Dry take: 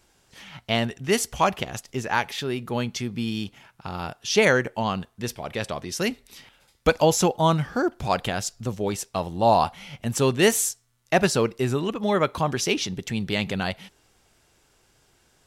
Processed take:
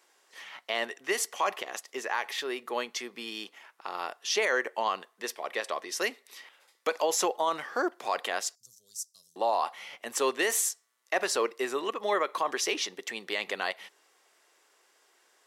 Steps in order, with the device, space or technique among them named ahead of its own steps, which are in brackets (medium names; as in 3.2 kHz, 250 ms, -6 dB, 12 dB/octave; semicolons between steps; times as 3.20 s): 8.55–9.36 s: elliptic band-stop 120–5600 Hz, stop band 40 dB; laptop speaker (high-pass 370 Hz 24 dB/octave; peaking EQ 1.1 kHz +7 dB 0.22 oct; peaking EQ 1.9 kHz +7 dB 0.25 oct; peak limiter -14 dBFS, peak gain reduction 10 dB); trim -3 dB